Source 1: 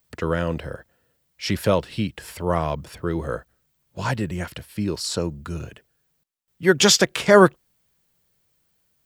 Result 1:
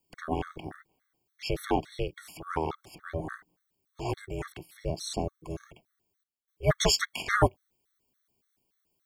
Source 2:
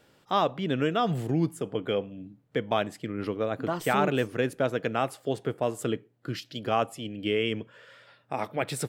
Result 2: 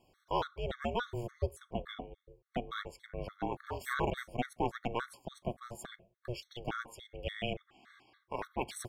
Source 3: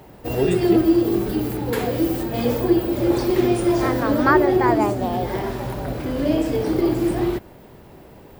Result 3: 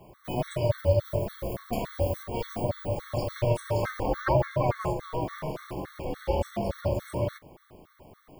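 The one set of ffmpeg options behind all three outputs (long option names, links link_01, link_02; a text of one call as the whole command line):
ffmpeg -i in.wav -af "aeval=exprs='val(0)*sin(2*PI*240*n/s)':channel_layout=same,afftfilt=real='re*gt(sin(2*PI*3.5*pts/sr)*(1-2*mod(floor(b*sr/1024/1100),2)),0)':imag='im*gt(sin(2*PI*3.5*pts/sr)*(1-2*mod(floor(b*sr/1024/1100),2)),0)':win_size=1024:overlap=0.75,volume=-3dB" out.wav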